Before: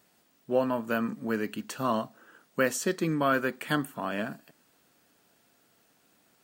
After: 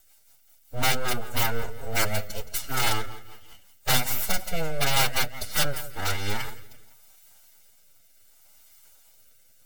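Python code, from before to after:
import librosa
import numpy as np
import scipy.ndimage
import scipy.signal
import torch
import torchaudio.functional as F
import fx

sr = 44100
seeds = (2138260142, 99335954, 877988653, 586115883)

p1 = np.abs(x)
p2 = fx.high_shelf(p1, sr, hz=5000.0, db=12.0)
p3 = p2 + fx.echo_feedback(p2, sr, ms=114, feedback_pct=38, wet_db=-15.0, dry=0)
p4 = fx.rotary_switch(p3, sr, hz=8.0, then_hz=1.0, switch_at_s=3.63)
p5 = fx.peak_eq(p4, sr, hz=180.0, db=-5.5, octaves=0.32)
p6 = fx.rider(p5, sr, range_db=10, speed_s=0.5)
p7 = p5 + F.gain(torch.from_numpy(p6), -2.0).numpy()
p8 = (np.mod(10.0 ** (14.5 / 20.0) * p7 + 1.0, 2.0) - 1.0) / 10.0 ** (14.5 / 20.0)
p9 = fx.stretch_vocoder(p8, sr, factor=1.5)
p10 = fx.hum_notches(p9, sr, base_hz=60, count=2)
y = p10 + 0.48 * np.pad(p10, (int(1.4 * sr / 1000.0), 0))[:len(p10)]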